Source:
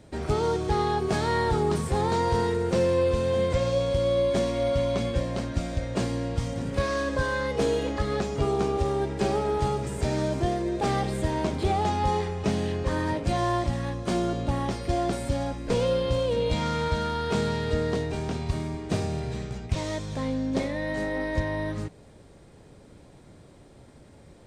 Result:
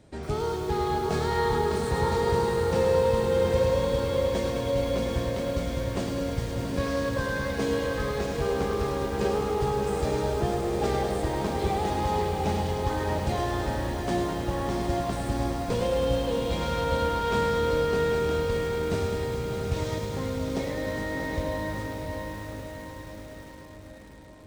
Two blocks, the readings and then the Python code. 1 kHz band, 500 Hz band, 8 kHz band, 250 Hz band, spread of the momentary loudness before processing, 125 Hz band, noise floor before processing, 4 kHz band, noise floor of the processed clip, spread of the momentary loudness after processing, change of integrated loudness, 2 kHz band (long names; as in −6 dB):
0.0 dB, +0.5 dB, 0.0 dB, −1.5 dB, 6 LU, −1.5 dB, −52 dBFS, −0.5 dB, −43 dBFS, 7 LU, −0.5 dB, 0.0 dB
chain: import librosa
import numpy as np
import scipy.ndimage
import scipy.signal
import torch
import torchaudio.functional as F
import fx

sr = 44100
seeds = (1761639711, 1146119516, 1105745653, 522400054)

y = fx.echo_diffused(x, sr, ms=690, feedback_pct=59, wet_db=-4.5)
y = fx.echo_crushed(y, sr, ms=105, feedback_pct=80, bits=7, wet_db=-7)
y = F.gain(torch.from_numpy(y), -4.0).numpy()